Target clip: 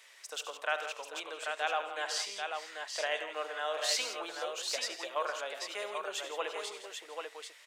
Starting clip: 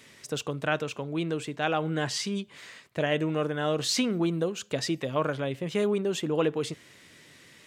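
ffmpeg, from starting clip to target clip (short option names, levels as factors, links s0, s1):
-af "highpass=f=620:w=0.5412,highpass=f=620:w=1.3066,aecho=1:1:71|96|138|164|451|789:0.211|0.2|0.106|0.251|0.126|0.562,volume=0.668"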